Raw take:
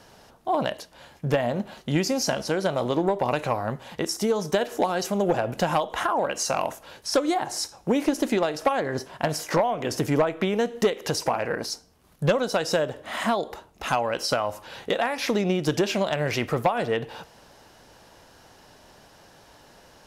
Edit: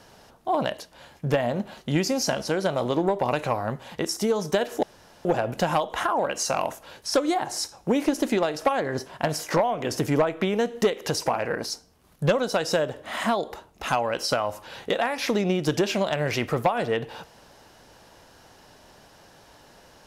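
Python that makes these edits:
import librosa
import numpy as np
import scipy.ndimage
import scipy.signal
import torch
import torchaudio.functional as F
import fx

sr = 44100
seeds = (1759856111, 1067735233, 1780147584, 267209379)

y = fx.edit(x, sr, fx.room_tone_fill(start_s=4.83, length_s=0.42), tone=tone)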